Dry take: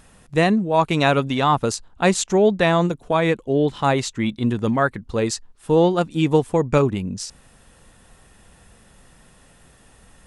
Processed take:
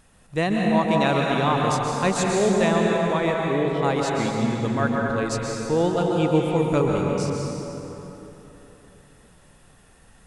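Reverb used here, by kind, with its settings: plate-style reverb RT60 3.5 s, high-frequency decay 0.6×, pre-delay 0.115 s, DRR -1.5 dB; gain -6 dB

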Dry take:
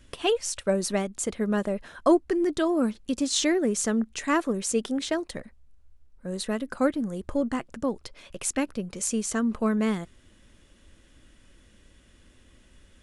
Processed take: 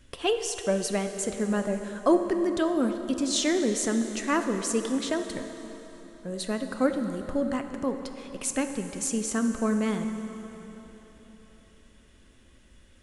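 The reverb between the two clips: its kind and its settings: plate-style reverb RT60 4 s, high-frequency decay 0.8×, DRR 6.5 dB; gain -1.5 dB

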